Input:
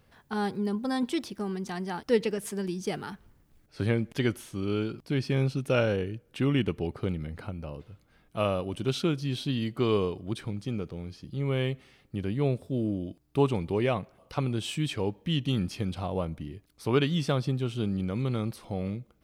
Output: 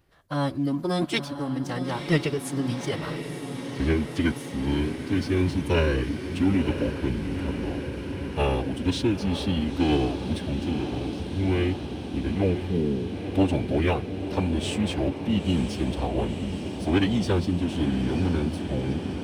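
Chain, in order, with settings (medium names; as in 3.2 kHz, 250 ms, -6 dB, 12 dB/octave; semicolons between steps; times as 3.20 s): formant-preserving pitch shift -6.5 st; waveshaping leveller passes 1; echo that smears into a reverb 964 ms, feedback 76%, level -8.5 dB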